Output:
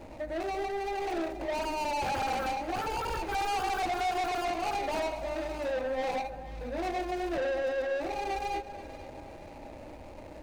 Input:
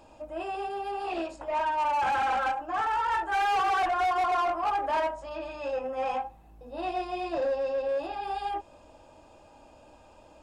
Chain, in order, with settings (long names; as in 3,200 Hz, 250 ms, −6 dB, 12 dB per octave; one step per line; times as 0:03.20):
running median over 41 samples
in parallel at +2.5 dB: downward compressor, threshold −46 dBFS, peak gain reduction 17 dB
on the sum: soft clipping −32 dBFS, distortion −12 dB
delay that swaps between a low-pass and a high-pass 240 ms, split 900 Hz, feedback 66%, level −10.5 dB
level +3.5 dB